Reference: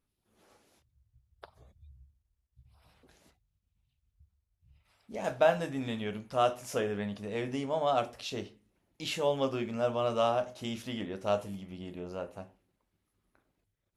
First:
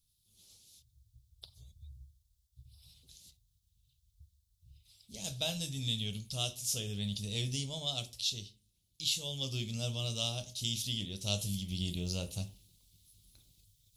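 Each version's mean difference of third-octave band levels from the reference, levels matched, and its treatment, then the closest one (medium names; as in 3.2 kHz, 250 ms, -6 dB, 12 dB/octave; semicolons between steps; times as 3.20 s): 11.0 dB: FFT filter 130 Hz 0 dB, 270 Hz -16 dB, 1 kHz -25 dB, 1.7 kHz -26 dB, 3.6 kHz +8 dB; gain riding 0.5 s; trim +4 dB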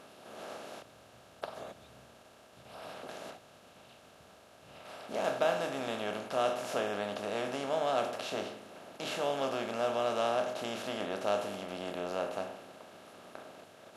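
8.0 dB: spectral levelling over time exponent 0.4; high-pass 210 Hz 6 dB/octave; trim -7 dB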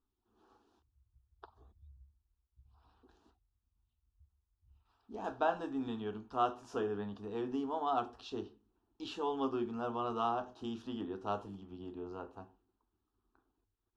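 5.0 dB: low-pass 3 kHz 12 dB/octave; static phaser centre 570 Hz, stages 6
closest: third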